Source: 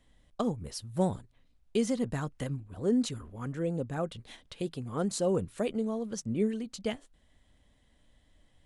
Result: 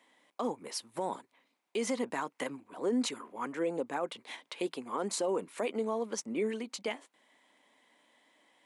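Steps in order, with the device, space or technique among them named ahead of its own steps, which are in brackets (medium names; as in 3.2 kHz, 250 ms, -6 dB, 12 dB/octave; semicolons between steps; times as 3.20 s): laptop speaker (high-pass 270 Hz 24 dB/octave; peaking EQ 960 Hz +9.5 dB 0.57 oct; peaking EQ 2.2 kHz +8 dB 0.47 oct; peak limiter -25.5 dBFS, peak gain reduction 11.5 dB); trim +2 dB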